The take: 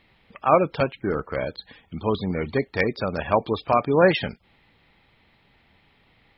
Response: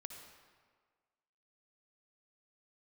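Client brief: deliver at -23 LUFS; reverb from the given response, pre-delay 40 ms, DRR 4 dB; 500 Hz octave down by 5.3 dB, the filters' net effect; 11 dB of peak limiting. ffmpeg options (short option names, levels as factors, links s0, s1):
-filter_complex "[0:a]equalizer=f=500:t=o:g=-6.5,alimiter=limit=0.126:level=0:latency=1,asplit=2[s0][s1];[1:a]atrim=start_sample=2205,adelay=40[s2];[s1][s2]afir=irnorm=-1:irlink=0,volume=1[s3];[s0][s3]amix=inputs=2:normalize=0,volume=2"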